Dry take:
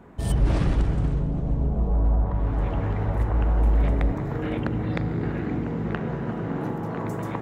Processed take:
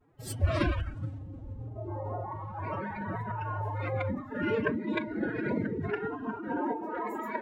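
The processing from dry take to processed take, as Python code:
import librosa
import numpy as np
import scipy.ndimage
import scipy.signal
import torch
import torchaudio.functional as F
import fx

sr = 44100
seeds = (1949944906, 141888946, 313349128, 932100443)

y = fx.vibrato(x, sr, rate_hz=0.43, depth_cents=32.0)
y = fx.noise_reduce_blind(y, sr, reduce_db=19)
y = fx.pitch_keep_formants(y, sr, semitones=11.5)
y = y * librosa.db_to_amplitude(2.0)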